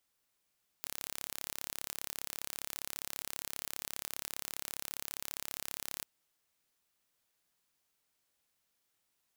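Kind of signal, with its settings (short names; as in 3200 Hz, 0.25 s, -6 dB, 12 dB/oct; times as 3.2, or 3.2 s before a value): pulse train 34.9/s, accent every 0, -12 dBFS 5.20 s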